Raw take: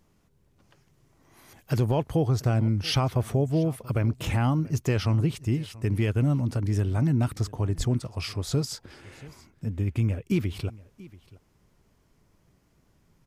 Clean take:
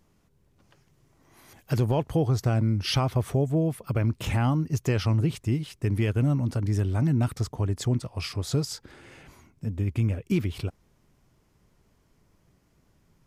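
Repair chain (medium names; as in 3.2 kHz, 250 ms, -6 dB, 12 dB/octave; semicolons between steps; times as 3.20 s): 7.77–7.89 s: high-pass 140 Hz 24 dB/octave; inverse comb 683 ms -21 dB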